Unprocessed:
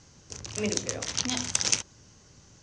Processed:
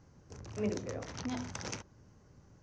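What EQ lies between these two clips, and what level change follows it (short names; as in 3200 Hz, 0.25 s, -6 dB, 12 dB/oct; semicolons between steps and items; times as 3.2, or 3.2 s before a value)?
dynamic EQ 8400 Hz, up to -6 dB, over -46 dBFS, Q 2.8; tape spacing loss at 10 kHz 22 dB; bell 3300 Hz -8.5 dB 1.2 oct; -2.5 dB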